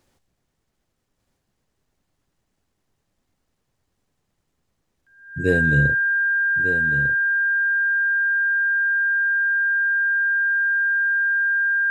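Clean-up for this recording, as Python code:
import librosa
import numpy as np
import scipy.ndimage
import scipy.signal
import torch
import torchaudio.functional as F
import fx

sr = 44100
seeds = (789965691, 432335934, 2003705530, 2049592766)

y = fx.notch(x, sr, hz=1600.0, q=30.0)
y = fx.fix_echo_inverse(y, sr, delay_ms=1199, level_db=-9.5)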